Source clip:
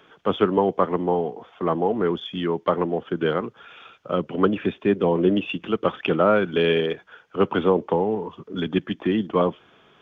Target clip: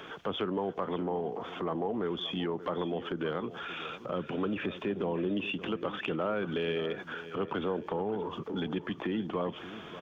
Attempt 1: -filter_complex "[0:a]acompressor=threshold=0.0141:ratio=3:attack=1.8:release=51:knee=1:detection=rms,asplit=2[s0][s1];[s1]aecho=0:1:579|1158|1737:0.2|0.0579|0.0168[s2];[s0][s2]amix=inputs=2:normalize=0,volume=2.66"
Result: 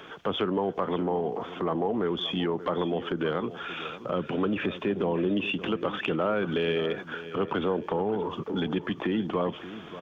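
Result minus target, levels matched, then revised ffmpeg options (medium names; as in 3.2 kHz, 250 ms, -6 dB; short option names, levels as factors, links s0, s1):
compression: peak gain reduction -5 dB
-filter_complex "[0:a]acompressor=threshold=0.00596:ratio=3:attack=1.8:release=51:knee=1:detection=rms,asplit=2[s0][s1];[s1]aecho=0:1:579|1158|1737:0.2|0.0579|0.0168[s2];[s0][s2]amix=inputs=2:normalize=0,volume=2.66"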